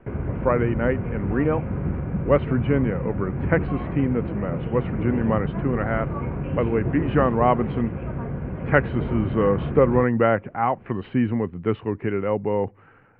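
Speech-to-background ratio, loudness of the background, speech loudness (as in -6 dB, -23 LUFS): 4.5 dB, -28.5 LUFS, -24.0 LUFS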